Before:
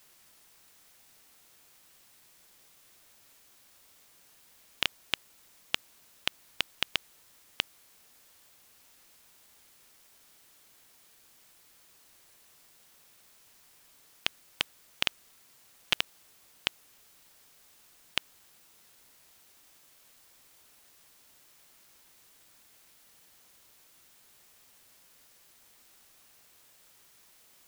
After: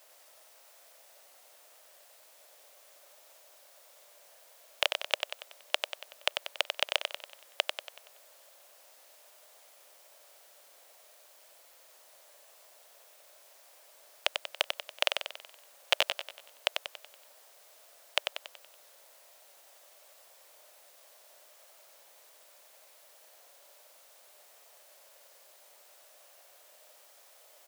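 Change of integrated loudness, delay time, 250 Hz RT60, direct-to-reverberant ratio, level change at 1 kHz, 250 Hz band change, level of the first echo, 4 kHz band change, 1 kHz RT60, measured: +1.0 dB, 94 ms, no reverb, no reverb, +6.0 dB, -8.5 dB, -5.5 dB, +1.5 dB, no reverb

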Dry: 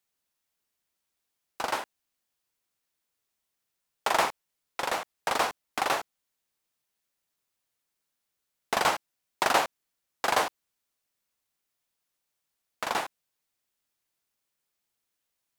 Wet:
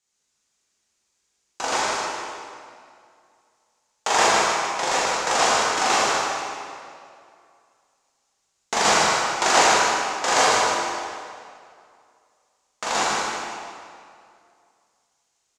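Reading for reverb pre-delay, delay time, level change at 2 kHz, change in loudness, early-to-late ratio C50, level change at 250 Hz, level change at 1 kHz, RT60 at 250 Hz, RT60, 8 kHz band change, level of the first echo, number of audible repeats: 14 ms, 153 ms, +10.0 dB, +8.5 dB, -4.5 dB, +9.5 dB, +9.5 dB, 2.2 s, 2.3 s, +15.5 dB, -5.0 dB, 1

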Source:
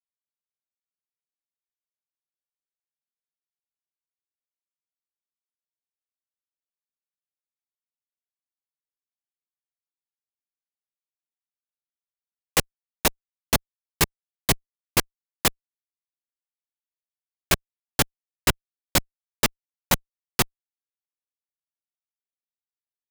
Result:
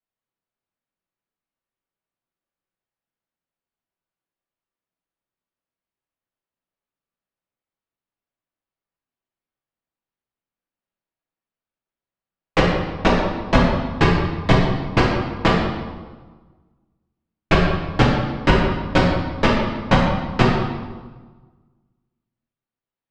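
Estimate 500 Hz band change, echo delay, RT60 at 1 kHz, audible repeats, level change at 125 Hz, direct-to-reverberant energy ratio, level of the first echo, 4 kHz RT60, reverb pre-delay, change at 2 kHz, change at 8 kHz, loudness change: +12.0 dB, no echo, 1.4 s, no echo, +14.0 dB, -5.0 dB, no echo, 1.0 s, 4 ms, +7.0 dB, -15.5 dB, +6.0 dB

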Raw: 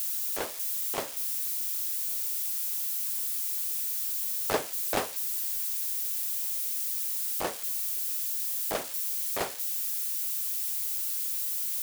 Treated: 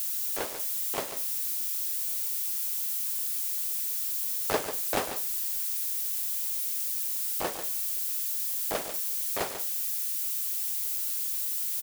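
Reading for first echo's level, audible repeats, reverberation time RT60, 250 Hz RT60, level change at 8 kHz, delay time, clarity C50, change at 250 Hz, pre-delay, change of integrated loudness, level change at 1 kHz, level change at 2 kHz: -10.0 dB, 1, no reverb, no reverb, +0.5 dB, 142 ms, no reverb, +0.5 dB, no reverb, +0.5 dB, +0.5 dB, +0.5 dB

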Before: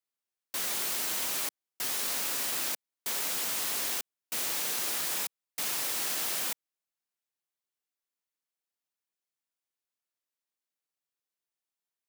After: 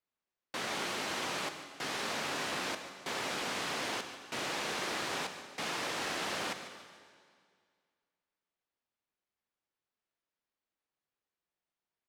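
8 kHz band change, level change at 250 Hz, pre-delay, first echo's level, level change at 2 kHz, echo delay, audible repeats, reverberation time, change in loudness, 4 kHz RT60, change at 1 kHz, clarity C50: -10.5 dB, +6.0 dB, 21 ms, -14.5 dB, +2.0 dB, 146 ms, 3, 2.0 s, -6.0 dB, 1.9 s, +4.5 dB, 8.0 dB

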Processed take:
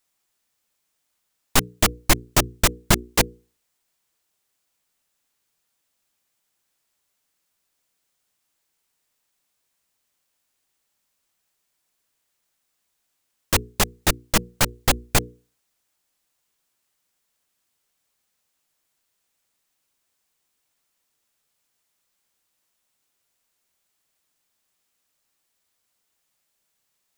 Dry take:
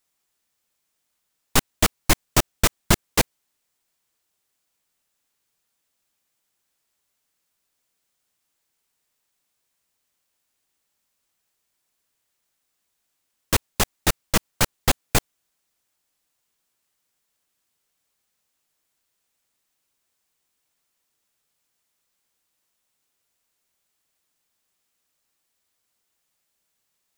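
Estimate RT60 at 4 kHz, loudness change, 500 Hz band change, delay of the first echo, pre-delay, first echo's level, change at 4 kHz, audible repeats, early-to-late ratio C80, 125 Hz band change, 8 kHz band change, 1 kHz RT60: no reverb, +1.0 dB, +0.5 dB, no echo, no reverb, no echo, +1.0 dB, no echo, no reverb, 0.0 dB, +1.0 dB, no reverb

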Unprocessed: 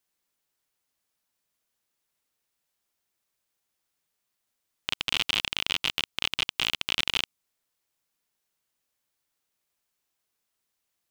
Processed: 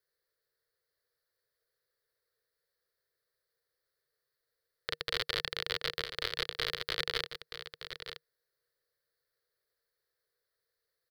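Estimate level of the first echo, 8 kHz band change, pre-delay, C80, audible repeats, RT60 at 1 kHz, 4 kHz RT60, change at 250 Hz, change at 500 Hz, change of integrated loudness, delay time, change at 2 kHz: -10.0 dB, -11.5 dB, no reverb, no reverb, 1, no reverb, no reverb, -9.0 dB, +5.5 dB, -8.5 dB, 925 ms, -6.0 dB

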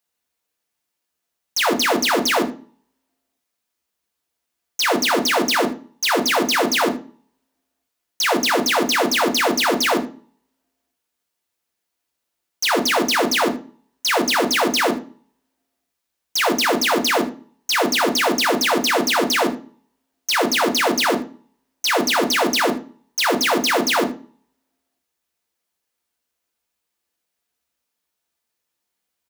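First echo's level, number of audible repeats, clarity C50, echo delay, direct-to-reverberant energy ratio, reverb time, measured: -16.5 dB, 1, 12.5 dB, 77 ms, 3.0 dB, 0.40 s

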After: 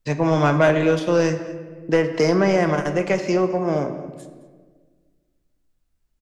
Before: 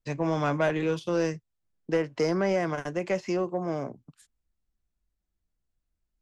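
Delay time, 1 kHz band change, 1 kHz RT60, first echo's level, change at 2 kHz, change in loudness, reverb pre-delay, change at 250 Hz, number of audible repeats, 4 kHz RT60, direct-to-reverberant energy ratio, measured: 216 ms, +8.5 dB, 1.3 s, -19.5 dB, +9.0 dB, +8.5 dB, 5 ms, +8.5 dB, 1, 0.85 s, 7.0 dB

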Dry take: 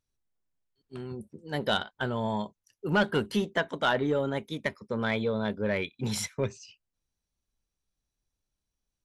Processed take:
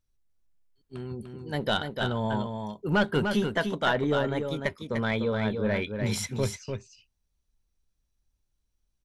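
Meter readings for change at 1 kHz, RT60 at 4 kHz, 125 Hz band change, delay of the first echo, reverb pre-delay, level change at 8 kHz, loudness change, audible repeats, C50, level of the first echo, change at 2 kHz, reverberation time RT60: +1.0 dB, no reverb, +4.0 dB, 297 ms, no reverb, +1.0 dB, +1.5 dB, 1, no reverb, -6.0 dB, +1.0 dB, no reverb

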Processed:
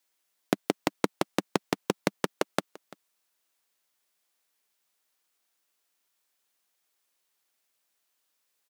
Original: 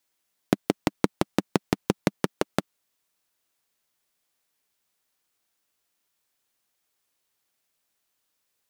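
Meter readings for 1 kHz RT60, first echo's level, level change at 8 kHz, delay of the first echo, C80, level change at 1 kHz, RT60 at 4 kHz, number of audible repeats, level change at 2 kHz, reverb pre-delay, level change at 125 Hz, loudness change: no reverb, -21.0 dB, 0.0 dB, 341 ms, no reverb, -0.5 dB, no reverb, 1, 0.0 dB, no reverb, -7.5 dB, -3.0 dB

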